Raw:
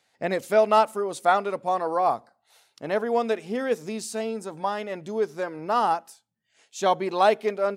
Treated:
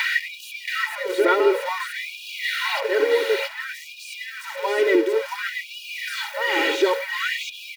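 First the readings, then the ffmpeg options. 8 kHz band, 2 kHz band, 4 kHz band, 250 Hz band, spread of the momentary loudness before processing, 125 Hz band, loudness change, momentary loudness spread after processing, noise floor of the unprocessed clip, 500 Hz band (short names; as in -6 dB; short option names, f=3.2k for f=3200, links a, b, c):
+2.5 dB, +11.5 dB, +11.0 dB, +3.0 dB, 11 LU, under -30 dB, +2.0 dB, 13 LU, -72 dBFS, +2.0 dB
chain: -filter_complex "[0:a]aeval=exprs='val(0)+0.5*0.0531*sgn(val(0))':c=same,lowshelf=f=410:t=q:w=1.5:g=13.5,aphaser=in_gain=1:out_gain=1:delay=4.9:decay=0.28:speed=1.4:type=sinusoidal,acompressor=threshold=-22dB:ratio=6,aecho=1:1:2.1:0.92,aecho=1:1:676:0.596,acrossover=split=3400[a][b];[b]acompressor=threshold=-40dB:ratio=4:attack=1:release=60[c];[a][c]amix=inputs=2:normalize=0,equalizer=f=250:t=o:w=1:g=11,equalizer=f=2k:t=o:w=1:g=11,equalizer=f=4k:t=o:w=1:g=4,equalizer=f=8k:t=o:w=1:g=-5,aeval=exprs='val(0)+0.0316*sin(2*PI*550*n/s)':c=same,afftfilt=real='re*gte(b*sr/1024,270*pow(2400/270,0.5+0.5*sin(2*PI*0.56*pts/sr)))':imag='im*gte(b*sr/1024,270*pow(2400/270,0.5+0.5*sin(2*PI*0.56*pts/sr)))':win_size=1024:overlap=0.75,volume=1.5dB"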